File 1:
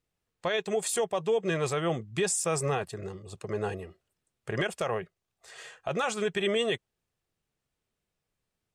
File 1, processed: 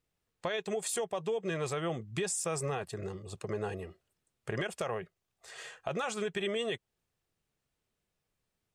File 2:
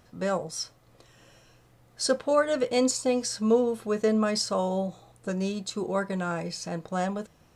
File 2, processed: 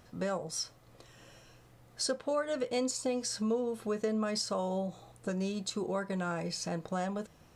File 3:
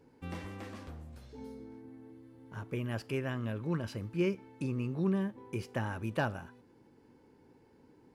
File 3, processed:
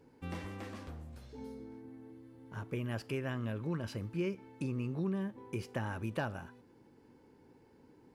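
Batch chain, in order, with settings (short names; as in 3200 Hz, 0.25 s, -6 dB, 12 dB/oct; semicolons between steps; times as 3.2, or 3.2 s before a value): compressor 2.5:1, threshold -33 dBFS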